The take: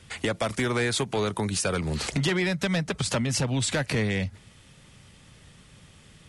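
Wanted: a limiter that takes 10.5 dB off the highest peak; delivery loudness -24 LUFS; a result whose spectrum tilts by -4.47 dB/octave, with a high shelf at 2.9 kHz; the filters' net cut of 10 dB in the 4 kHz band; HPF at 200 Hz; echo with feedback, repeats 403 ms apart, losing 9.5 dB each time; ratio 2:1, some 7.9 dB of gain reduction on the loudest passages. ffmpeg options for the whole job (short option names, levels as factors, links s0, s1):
-af "highpass=200,highshelf=f=2900:g=-8.5,equalizer=f=4000:t=o:g=-6,acompressor=threshold=0.0112:ratio=2,alimiter=level_in=3.16:limit=0.0631:level=0:latency=1,volume=0.316,aecho=1:1:403|806|1209|1612:0.335|0.111|0.0365|0.012,volume=8.41"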